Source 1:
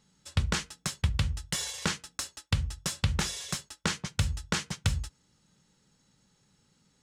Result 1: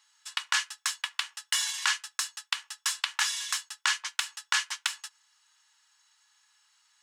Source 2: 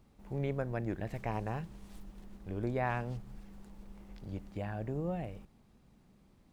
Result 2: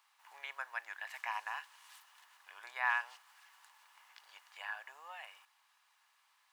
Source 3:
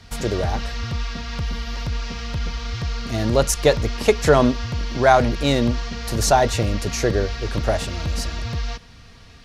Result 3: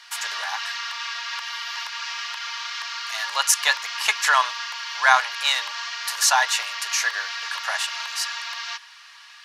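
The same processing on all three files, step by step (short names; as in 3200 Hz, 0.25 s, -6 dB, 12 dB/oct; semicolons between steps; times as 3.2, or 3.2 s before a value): Chebyshev high-pass 950 Hz, order 4; small resonant body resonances 1700/2900 Hz, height 9 dB, ringing for 45 ms; gain +5 dB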